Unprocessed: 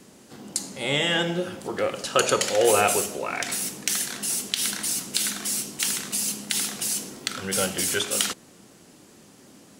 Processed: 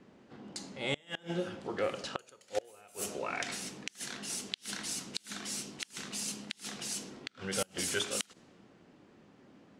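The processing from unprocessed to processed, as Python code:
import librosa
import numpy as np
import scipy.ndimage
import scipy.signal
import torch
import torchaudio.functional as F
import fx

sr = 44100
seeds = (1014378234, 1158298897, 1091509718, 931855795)

y = fx.env_lowpass(x, sr, base_hz=2400.0, full_db=-18.5)
y = fx.gate_flip(y, sr, shuts_db=-12.0, range_db=-30)
y = y * librosa.db_to_amplitude(-7.0)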